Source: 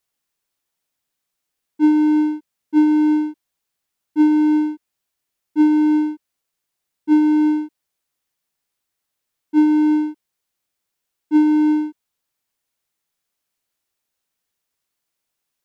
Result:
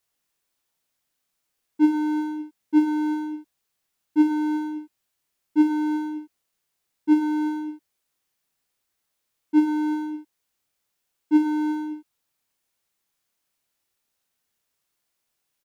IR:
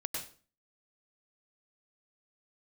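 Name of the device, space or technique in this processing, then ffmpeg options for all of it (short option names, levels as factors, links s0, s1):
slapback doubling: -filter_complex "[0:a]asplit=3[s0][s1][s2];[s1]adelay=28,volume=0.501[s3];[s2]adelay=104,volume=0.266[s4];[s0][s3][s4]amix=inputs=3:normalize=0"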